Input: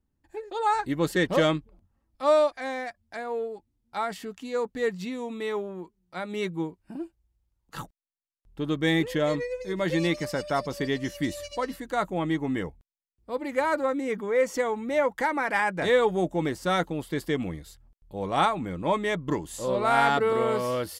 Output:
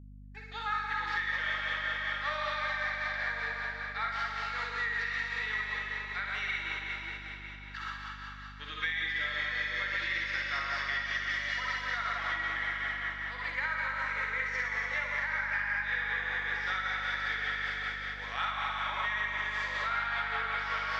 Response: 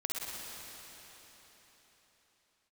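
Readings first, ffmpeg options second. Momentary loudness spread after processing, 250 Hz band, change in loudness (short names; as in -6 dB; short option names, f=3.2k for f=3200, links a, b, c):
6 LU, -24.0 dB, -5.0 dB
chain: -filter_complex "[0:a]acrossover=split=4100[a][b];[b]acompressor=threshold=-58dB:ratio=4:attack=1:release=60[c];[a][c]amix=inputs=2:normalize=0,highshelf=f=7.2k:t=q:w=3:g=-10.5,asplit=2[d][e];[e]asoftclip=type=tanh:threshold=-16dB,volume=-7dB[f];[d][f]amix=inputs=2:normalize=0,agate=range=-33dB:threshold=-39dB:ratio=3:detection=peak,highpass=f=1.7k:t=q:w=2.8[g];[1:a]atrim=start_sample=2205[h];[g][h]afir=irnorm=-1:irlink=0,tremolo=f=5.2:d=0.4,acompressor=threshold=-27dB:ratio=10,flanger=delay=4.8:depth=9.3:regen=-85:speed=0.45:shape=sinusoidal,aeval=exprs='val(0)+0.00316*(sin(2*PI*50*n/s)+sin(2*PI*2*50*n/s)/2+sin(2*PI*3*50*n/s)/3+sin(2*PI*4*50*n/s)/4+sin(2*PI*5*50*n/s)/5)':c=same,volume=2dB"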